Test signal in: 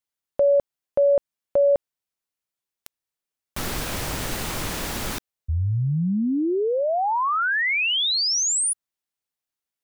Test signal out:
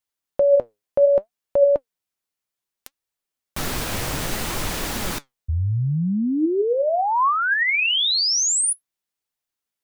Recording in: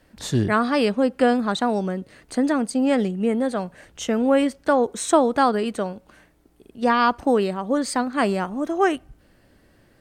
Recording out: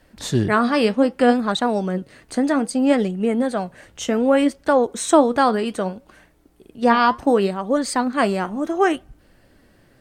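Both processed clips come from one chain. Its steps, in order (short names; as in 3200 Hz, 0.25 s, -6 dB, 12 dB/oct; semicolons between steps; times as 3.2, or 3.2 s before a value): flange 0.64 Hz, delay 1 ms, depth 8.9 ms, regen +73%; gain +6.5 dB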